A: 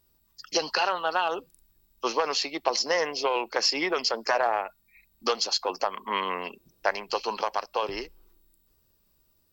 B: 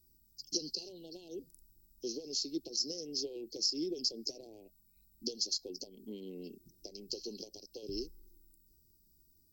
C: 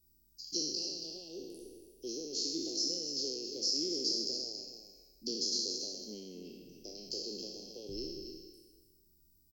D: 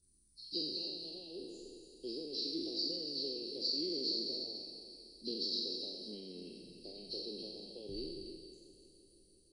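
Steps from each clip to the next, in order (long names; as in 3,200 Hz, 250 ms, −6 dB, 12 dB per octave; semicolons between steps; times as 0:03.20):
downward compressor, threshold −27 dBFS, peak gain reduction 9 dB; Chebyshev band-stop filter 350–5,000 Hz, order 3
peak hold with a decay on every bin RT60 1.41 s; single-tap delay 278 ms −9 dB; level −4 dB
hearing-aid frequency compression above 3,400 Hz 1.5 to 1; echo machine with several playback heads 170 ms, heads second and third, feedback 54%, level −18 dB; level −1.5 dB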